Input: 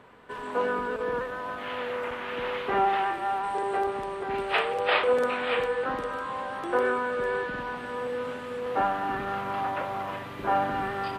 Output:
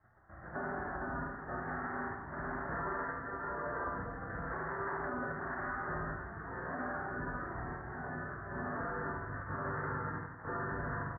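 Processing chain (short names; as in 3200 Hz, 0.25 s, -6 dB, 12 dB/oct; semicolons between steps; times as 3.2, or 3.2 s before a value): low shelf 440 Hz -6 dB; resonator 53 Hz, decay 0.21 s, harmonics odd, mix 90%; rotary speaker horn 1 Hz; spectral gate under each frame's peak -15 dB weak; steep low-pass 1800 Hz 96 dB/oct; bell 92 Hz +12.5 dB 0.99 oct; doubler 49 ms -7.5 dB; early reflections 33 ms -8 dB, 76 ms -6.5 dB; limiter -42.5 dBFS, peak gain reduction 11 dB; echo 0.163 s -10 dB; gain +12.5 dB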